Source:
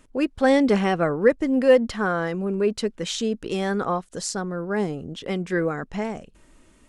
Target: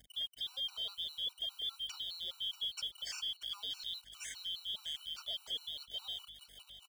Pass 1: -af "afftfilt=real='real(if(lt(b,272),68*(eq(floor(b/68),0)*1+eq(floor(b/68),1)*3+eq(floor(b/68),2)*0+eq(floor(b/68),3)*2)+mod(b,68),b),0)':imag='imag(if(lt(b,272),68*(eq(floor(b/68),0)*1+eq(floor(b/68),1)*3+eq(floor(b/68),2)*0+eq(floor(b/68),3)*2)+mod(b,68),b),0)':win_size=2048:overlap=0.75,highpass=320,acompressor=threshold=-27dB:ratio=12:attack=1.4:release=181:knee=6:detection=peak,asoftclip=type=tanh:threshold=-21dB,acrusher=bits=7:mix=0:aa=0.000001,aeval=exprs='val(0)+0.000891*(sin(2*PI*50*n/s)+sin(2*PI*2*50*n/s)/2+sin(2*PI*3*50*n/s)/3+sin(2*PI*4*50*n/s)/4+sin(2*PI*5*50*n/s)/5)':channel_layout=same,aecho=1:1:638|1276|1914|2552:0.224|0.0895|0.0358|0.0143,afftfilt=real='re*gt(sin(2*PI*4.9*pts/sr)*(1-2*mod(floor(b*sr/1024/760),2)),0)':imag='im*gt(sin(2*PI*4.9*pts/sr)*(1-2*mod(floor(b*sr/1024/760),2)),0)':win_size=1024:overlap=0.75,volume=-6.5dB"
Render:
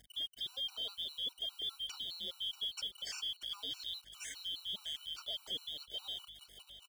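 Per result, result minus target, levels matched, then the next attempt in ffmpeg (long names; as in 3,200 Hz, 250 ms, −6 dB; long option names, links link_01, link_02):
soft clipping: distortion +19 dB; 250 Hz band +8.0 dB
-af "afftfilt=real='real(if(lt(b,272),68*(eq(floor(b/68),0)*1+eq(floor(b/68),1)*3+eq(floor(b/68),2)*0+eq(floor(b/68),3)*2)+mod(b,68),b),0)':imag='imag(if(lt(b,272),68*(eq(floor(b/68),0)*1+eq(floor(b/68),1)*3+eq(floor(b/68),2)*0+eq(floor(b/68),3)*2)+mod(b,68),b),0)':win_size=2048:overlap=0.75,highpass=320,acompressor=threshold=-27dB:ratio=12:attack=1.4:release=181:knee=6:detection=peak,asoftclip=type=tanh:threshold=-11dB,acrusher=bits=7:mix=0:aa=0.000001,aeval=exprs='val(0)+0.000891*(sin(2*PI*50*n/s)+sin(2*PI*2*50*n/s)/2+sin(2*PI*3*50*n/s)/3+sin(2*PI*4*50*n/s)/4+sin(2*PI*5*50*n/s)/5)':channel_layout=same,aecho=1:1:638|1276|1914|2552:0.224|0.0895|0.0358|0.0143,afftfilt=real='re*gt(sin(2*PI*4.9*pts/sr)*(1-2*mod(floor(b*sr/1024/760),2)),0)':imag='im*gt(sin(2*PI*4.9*pts/sr)*(1-2*mod(floor(b*sr/1024/760),2)),0)':win_size=1024:overlap=0.75,volume=-6.5dB"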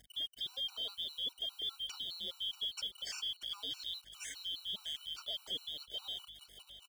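250 Hz band +8.0 dB
-af "afftfilt=real='real(if(lt(b,272),68*(eq(floor(b/68),0)*1+eq(floor(b/68),1)*3+eq(floor(b/68),2)*0+eq(floor(b/68),3)*2)+mod(b,68),b),0)':imag='imag(if(lt(b,272),68*(eq(floor(b/68),0)*1+eq(floor(b/68),1)*3+eq(floor(b/68),2)*0+eq(floor(b/68),3)*2)+mod(b,68),b),0)':win_size=2048:overlap=0.75,highpass=670,acompressor=threshold=-27dB:ratio=12:attack=1.4:release=181:knee=6:detection=peak,asoftclip=type=tanh:threshold=-11dB,acrusher=bits=7:mix=0:aa=0.000001,aeval=exprs='val(0)+0.000891*(sin(2*PI*50*n/s)+sin(2*PI*2*50*n/s)/2+sin(2*PI*3*50*n/s)/3+sin(2*PI*4*50*n/s)/4+sin(2*PI*5*50*n/s)/5)':channel_layout=same,aecho=1:1:638|1276|1914|2552:0.224|0.0895|0.0358|0.0143,afftfilt=real='re*gt(sin(2*PI*4.9*pts/sr)*(1-2*mod(floor(b*sr/1024/760),2)),0)':imag='im*gt(sin(2*PI*4.9*pts/sr)*(1-2*mod(floor(b*sr/1024/760),2)),0)':win_size=1024:overlap=0.75,volume=-6.5dB"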